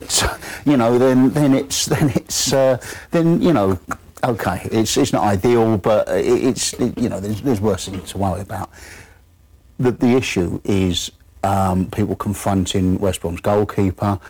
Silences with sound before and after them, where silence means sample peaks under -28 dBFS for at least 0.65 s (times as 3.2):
9.01–9.79